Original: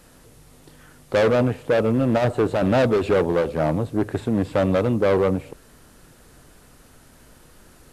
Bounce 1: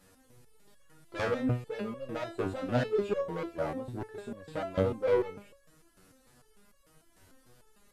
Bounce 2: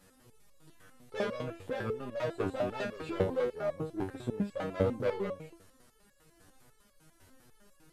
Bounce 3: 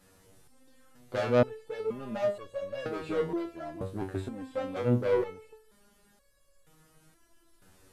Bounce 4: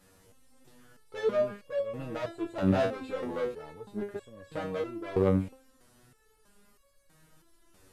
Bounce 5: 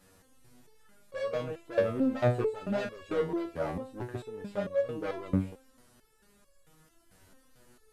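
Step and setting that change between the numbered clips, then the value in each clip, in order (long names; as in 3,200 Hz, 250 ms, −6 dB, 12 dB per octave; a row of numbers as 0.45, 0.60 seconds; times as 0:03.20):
step-sequenced resonator, speed: 6.7, 10, 2.1, 3.1, 4.5 Hertz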